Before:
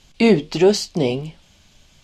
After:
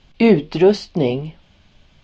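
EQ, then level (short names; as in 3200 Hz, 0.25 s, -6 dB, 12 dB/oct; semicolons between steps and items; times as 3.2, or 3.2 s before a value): air absorption 210 m; +2.0 dB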